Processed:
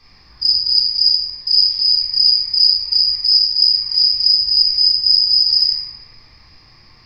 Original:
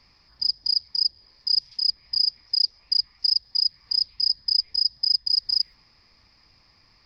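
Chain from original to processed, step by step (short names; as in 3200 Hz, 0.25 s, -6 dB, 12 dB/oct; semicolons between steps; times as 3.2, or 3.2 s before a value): shoebox room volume 940 m³, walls mixed, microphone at 3.7 m; gain +3.5 dB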